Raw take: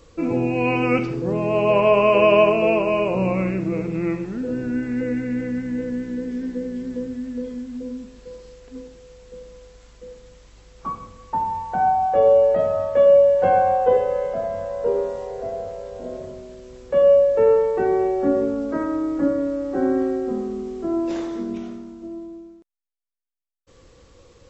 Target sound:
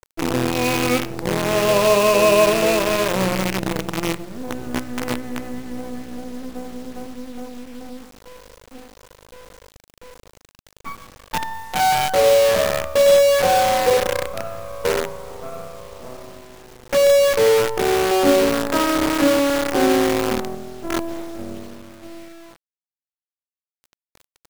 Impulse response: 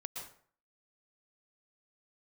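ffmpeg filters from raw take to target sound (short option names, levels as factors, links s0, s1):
-filter_complex "[0:a]asettb=1/sr,asplit=3[s0][s1][s2];[s0]atrim=end=18.114[s3];[s1]atrim=start=18.11:end=20.55,asetpts=PTS-STARTPTS,afade=t=in:d=0.004:c=qsin,afade=t=out:st=2.436:d=0.004:c=qsin,equalizer=f=1100:t=o:w=2.4:g=9.5[s4];[s2]atrim=start=20.546[s5];[s3][s4]acrossfade=d=0.004:c1=hsin:c2=qsin[s6];[s6][s5]acrossfade=d=0.004:c1=qsin:c2=hsin,acrusher=bits=4:dc=4:mix=0:aa=0.000001"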